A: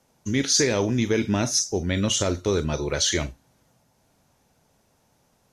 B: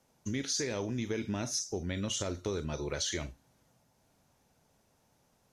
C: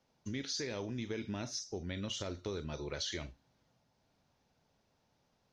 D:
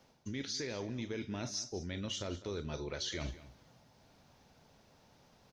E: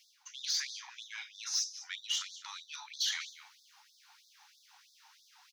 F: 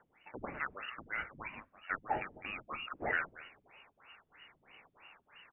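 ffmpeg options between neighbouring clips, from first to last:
-af "acompressor=threshold=-27dB:ratio=3,volume=-5.5dB"
-af "highshelf=f=6.6k:t=q:w=1.5:g=-12,volume=-5dB"
-af "areverse,acompressor=threshold=-48dB:ratio=6,areverse,aecho=1:1:201:0.158,volume=11dB"
-af "asoftclip=type=tanh:threshold=-31dB,afftfilt=real='re*gte(b*sr/1024,720*pow(3500/720,0.5+0.5*sin(2*PI*3.1*pts/sr)))':imag='im*gte(b*sr/1024,720*pow(3500/720,0.5+0.5*sin(2*PI*3.1*pts/sr)))':win_size=1024:overlap=0.75,volume=8.5dB"
-af "afftfilt=real='re*pow(10,6/40*sin(2*PI*(0.78*log(max(b,1)*sr/1024/100)/log(2)-(-0.9)*(pts-256)/sr)))':imag='im*pow(10,6/40*sin(2*PI*(0.78*log(max(b,1)*sr/1024/100)/log(2)-(-0.9)*(pts-256)/sr)))':win_size=1024:overlap=0.75,lowpass=f=3.1k:t=q:w=0.5098,lowpass=f=3.1k:t=q:w=0.6013,lowpass=f=3.1k:t=q:w=0.9,lowpass=f=3.1k:t=q:w=2.563,afreqshift=-3700,volume=6dB"

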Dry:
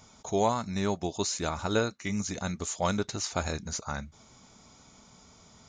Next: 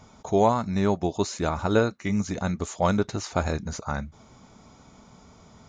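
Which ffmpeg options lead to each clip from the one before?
-af "highshelf=f=2.6k:g=-12,volume=6.5dB"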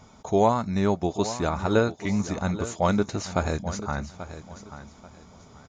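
-af "aecho=1:1:836|1672|2508:0.224|0.0604|0.0163"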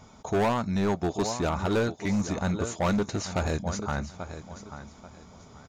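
-af "asoftclip=type=hard:threshold=-21dB"

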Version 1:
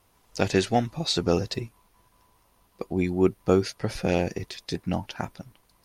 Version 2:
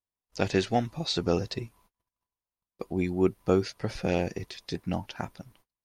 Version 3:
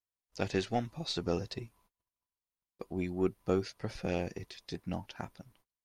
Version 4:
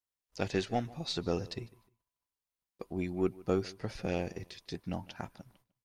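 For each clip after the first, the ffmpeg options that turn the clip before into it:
-filter_complex "[0:a]agate=range=-32dB:threshold=-57dB:ratio=16:detection=peak,acrossover=split=7000[a][b];[b]acompressor=threshold=-56dB:ratio=4:attack=1:release=60[c];[a][c]amix=inputs=2:normalize=0,volume=-3dB"
-af "aeval=exprs='0.355*(cos(1*acos(clip(val(0)/0.355,-1,1)))-cos(1*PI/2))+0.00794*(cos(8*acos(clip(val(0)/0.355,-1,1)))-cos(8*PI/2))':c=same,volume=-6.5dB"
-filter_complex "[0:a]asplit=2[a][b];[b]adelay=151,lowpass=f=4.5k:p=1,volume=-21.5dB,asplit=2[c][d];[d]adelay=151,lowpass=f=4.5k:p=1,volume=0.29[e];[a][c][e]amix=inputs=3:normalize=0"

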